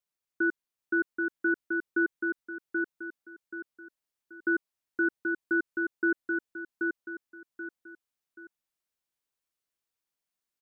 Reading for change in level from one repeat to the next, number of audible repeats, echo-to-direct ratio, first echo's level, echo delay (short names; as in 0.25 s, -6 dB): -9.0 dB, 3, -3.0 dB, -3.5 dB, 0.781 s